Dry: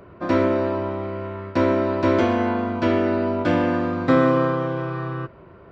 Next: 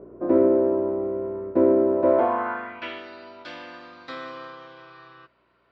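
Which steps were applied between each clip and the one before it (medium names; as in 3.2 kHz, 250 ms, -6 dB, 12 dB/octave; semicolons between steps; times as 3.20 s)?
treble shelf 3.2 kHz -11.5 dB; hum 60 Hz, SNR 20 dB; band-pass sweep 410 Hz -> 4.4 kHz, 1.92–3.08 s; trim +6 dB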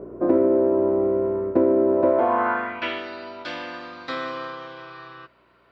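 compression 5:1, threshold -22 dBFS, peak gain reduction 8 dB; trim +6.5 dB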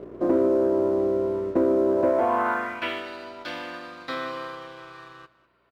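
waveshaping leveller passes 1; delay 201 ms -19 dB; trim -5.5 dB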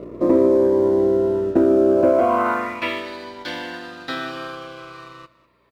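Shepard-style phaser falling 0.38 Hz; trim +7 dB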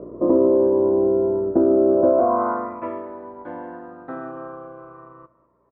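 low-pass 1.1 kHz 24 dB/octave; bass shelf 200 Hz -4.5 dB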